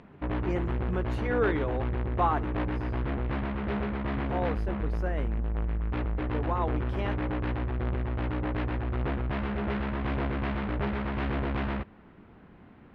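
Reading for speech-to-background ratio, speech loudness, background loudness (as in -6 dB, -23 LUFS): -2.5 dB, -34.0 LUFS, -31.5 LUFS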